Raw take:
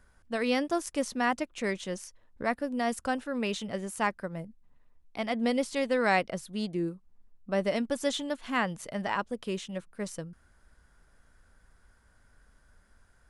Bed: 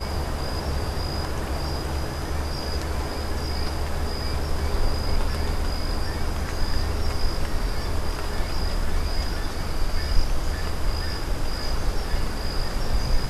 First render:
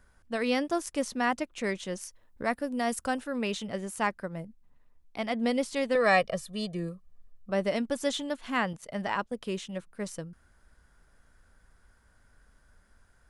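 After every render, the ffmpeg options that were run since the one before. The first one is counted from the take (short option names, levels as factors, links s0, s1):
-filter_complex "[0:a]asettb=1/sr,asplit=3[s0][s1][s2];[s0]atrim=end=2.014[s3];[s1]atrim=start=2.01:end=3.36,asetpts=PTS-STARTPTS,afade=t=in:d=0.004:c=qsin,afade=t=out:st=1.346:d=0.004:c=qsin,highshelf=f=9200:g=9[s4];[s2]atrim=start=3.356[s5];[s3][s4]acrossfade=d=0.004:c1=hsin:c2=qsin[s6];[s6][s5]acrossfade=d=0.004:c1=qsin:c2=hsin,asettb=1/sr,asplit=3[s7][s8][s9];[s7]atrim=end=5.954[s10];[s8]atrim=start=5.95:end=7.5,asetpts=PTS-STARTPTS,afade=t=in:d=0.004:c=qsin,afade=t=out:st=1.546:d=0.004:c=qsin,aecho=1:1:1.7:0.85,atrim=end_sample=68355[s11];[s9]atrim=start=7.496[s12];[s10][s11]acrossfade=d=0.004:c1=hsin:c2=qsin[s13];[s13][s12]acrossfade=d=0.004:c1=qsin:c2=hsin,asettb=1/sr,asplit=3[s14][s15][s16];[s14]atrim=end=8.734[s17];[s15]atrim=start=8.73:end=9.41,asetpts=PTS-STARTPTS,afade=t=in:d=0.004:c=qsin,afade=t=out:st=0.676:d=0.004:c=qsin,agate=range=0.282:threshold=0.00631:ratio=16:release=100:detection=peak[s18];[s16]atrim=start=9.406[s19];[s17][s18]acrossfade=d=0.004:c1=hsin:c2=qsin[s20];[s20][s19]acrossfade=d=0.004:c1=qsin:c2=hsin"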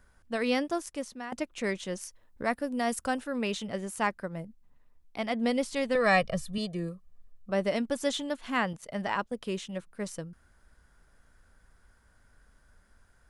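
-filter_complex "[0:a]asettb=1/sr,asplit=3[s0][s1][s2];[s0]atrim=end=5.444[s3];[s1]atrim=start=5.44:end=6.58,asetpts=PTS-STARTPTS,afade=t=in:d=0.004:c=qsin,afade=t=out:st=1.136:d=0.004:c=qsin,asubboost=boost=8.5:cutoff=200[s4];[s2]atrim=start=6.576[s5];[s3][s4]acrossfade=d=0.004:c1=hsin:c2=qsin[s6];[s6][s5]acrossfade=d=0.004:c1=qsin:c2=hsin,asplit=2[s7][s8];[s7]atrim=end=1.32,asetpts=PTS-STARTPTS,afade=t=out:st=0.56:d=0.76:silence=0.16788[s9];[s8]atrim=start=1.32,asetpts=PTS-STARTPTS,afade=t=in:d=0.004:c=hsin:silence=0.16788[s10];[s9][s10]concat=n=2:v=0:a=1"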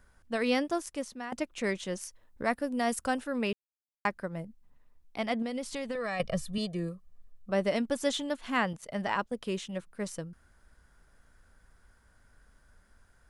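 -filter_complex "[0:a]asettb=1/sr,asplit=3[s0][s1][s2];[s0]atrim=end=5.424[s3];[s1]atrim=start=5.42:end=6.2,asetpts=PTS-STARTPTS,afade=t=in:d=0.004:c=qsin,afade=t=out:st=0.776:d=0.004:c=qsin,acompressor=threshold=0.0282:ratio=6:attack=3.2:release=140:knee=1:detection=peak[s4];[s2]atrim=start=6.196[s5];[s3][s4]acrossfade=d=0.004:c1=hsin:c2=qsin[s6];[s6][s5]acrossfade=d=0.004:c1=qsin:c2=hsin,asplit=3[s7][s8][s9];[s7]atrim=end=3.53,asetpts=PTS-STARTPTS,afade=t=out:st=3.526:d=0.004:c=hsin[s10];[s8]atrim=start=3.53:end=4.05,asetpts=PTS-STARTPTS,volume=0[s11];[s9]atrim=start=4.05,asetpts=PTS-STARTPTS,afade=t=in:d=0.004:c=hsin[s12];[s10][s11][s12]concat=n=3:v=0:a=1"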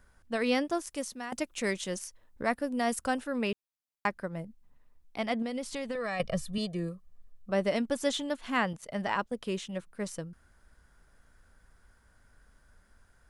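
-filter_complex "[0:a]asettb=1/sr,asplit=3[s0][s1][s2];[s0]atrim=end=0.904[s3];[s1]atrim=start=0.9:end=1.99,asetpts=PTS-STARTPTS,afade=t=in:d=0.004:c=qsin,afade=t=out:st=1.086:d=0.004:c=qsin,aemphasis=mode=production:type=cd[s4];[s2]atrim=start=1.986[s5];[s3][s4]acrossfade=d=0.004:c1=hsin:c2=qsin[s6];[s6][s5]acrossfade=d=0.004:c1=qsin:c2=hsin"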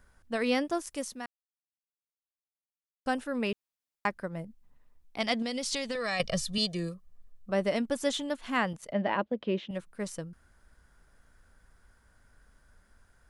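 -filter_complex "[0:a]asettb=1/sr,asplit=3[s0][s1][s2];[s0]atrim=end=5.204[s3];[s1]atrim=start=5.2:end=6.94,asetpts=PTS-STARTPTS,afade=t=in:d=0.004:c=qsin,afade=t=out:st=1.736:d=0.004:c=qsin,equalizer=f=5000:w=0.68:g=12.5[s4];[s2]atrim=start=6.936[s5];[s3][s4]acrossfade=d=0.004:c1=hsin:c2=qsin[s6];[s6][s5]acrossfade=d=0.004:c1=qsin:c2=hsin,asettb=1/sr,asplit=3[s7][s8][s9];[s7]atrim=end=8.924[s10];[s8]atrim=start=8.92:end=9.71,asetpts=PTS-STARTPTS,afade=t=in:d=0.004:c=qsin,afade=t=out:st=0.786:d=0.004:c=qsin,highpass=100,equalizer=f=210:t=q:w=4:g=4,equalizer=f=320:t=q:w=4:g=8,equalizer=f=580:t=q:w=4:g=7,equalizer=f=1300:t=q:w=4:g=-4,lowpass=f=3700:w=0.5412,lowpass=f=3700:w=1.3066[s11];[s9]atrim=start=9.706[s12];[s10][s11]acrossfade=d=0.004:c1=hsin:c2=qsin[s13];[s13][s12]acrossfade=d=0.004:c1=qsin:c2=hsin,asplit=3[s14][s15][s16];[s14]atrim=end=1.26,asetpts=PTS-STARTPTS,afade=t=out:st=1.256:d=0.004:c=hsin[s17];[s15]atrim=start=1.26:end=3.06,asetpts=PTS-STARTPTS,volume=0[s18];[s16]atrim=start=3.06,asetpts=PTS-STARTPTS,afade=t=in:d=0.004:c=hsin[s19];[s17][s18][s19]concat=n=3:v=0:a=1"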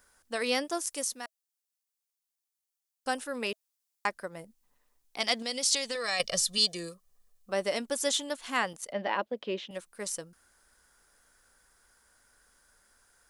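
-af "bass=f=250:g=-14,treble=f=4000:g=10,bandreject=f=640:w=16"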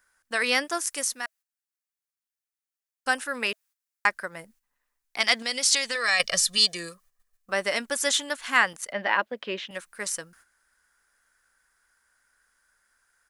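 -af "agate=range=0.282:threshold=0.001:ratio=16:detection=peak,firequalizer=gain_entry='entry(470,0);entry(1600,12);entry(3300,5)':delay=0.05:min_phase=1"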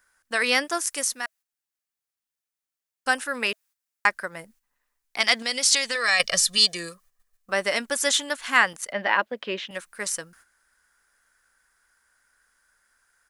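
-af "volume=1.26,alimiter=limit=0.708:level=0:latency=1"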